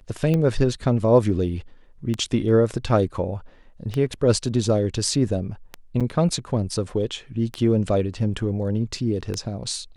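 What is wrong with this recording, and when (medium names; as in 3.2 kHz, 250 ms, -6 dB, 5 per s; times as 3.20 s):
tick 33 1/3 rpm -13 dBFS
6.00–6.01 s: dropout 6.4 ms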